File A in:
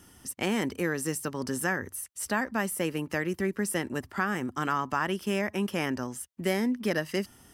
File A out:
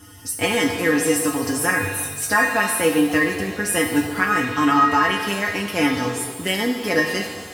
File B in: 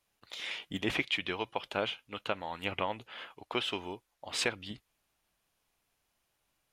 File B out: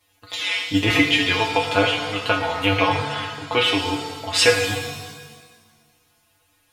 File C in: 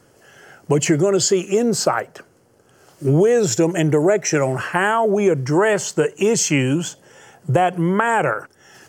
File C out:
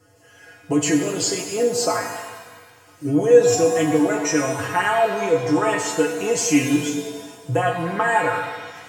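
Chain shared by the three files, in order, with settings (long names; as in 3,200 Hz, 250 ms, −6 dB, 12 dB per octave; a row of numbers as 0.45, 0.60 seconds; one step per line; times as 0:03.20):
tuned comb filter 97 Hz, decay 0.18 s, harmonics odd, mix 100%
reverb with rising layers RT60 1.5 s, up +7 semitones, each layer −8 dB, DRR 4 dB
loudness normalisation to −20 LKFS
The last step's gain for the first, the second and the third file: +20.0, +24.5, +7.5 decibels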